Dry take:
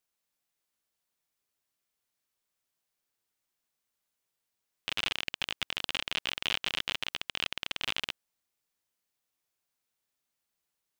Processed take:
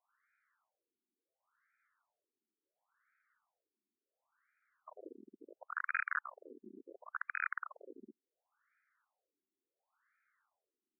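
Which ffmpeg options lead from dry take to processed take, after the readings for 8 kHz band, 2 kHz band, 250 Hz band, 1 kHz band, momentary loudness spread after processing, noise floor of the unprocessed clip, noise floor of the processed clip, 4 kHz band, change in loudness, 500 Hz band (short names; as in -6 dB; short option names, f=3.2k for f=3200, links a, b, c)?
under -30 dB, -4.0 dB, -6.5 dB, 0.0 dB, 21 LU, -85 dBFS, under -85 dBFS, under -40 dB, -6.5 dB, -7.0 dB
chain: -af "equalizer=f=1.5k:t=o:w=0.98:g=12,asoftclip=type=hard:threshold=-26.5dB,afftfilt=real='re*between(b*sr/1024,280*pow(1800/280,0.5+0.5*sin(2*PI*0.71*pts/sr))/1.41,280*pow(1800/280,0.5+0.5*sin(2*PI*0.71*pts/sr))*1.41)':imag='im*between(b*sr/1024,280*pow(1800/280,0.5+0.5*sin(2*PI*0.71*pts/sr))/1.41,280*pow(1800/280,0.5+0.5*sin(2*PI*0.71*pts/sr))*1.41)':win_size=1024:overlap=0.75,volume=7.5dB"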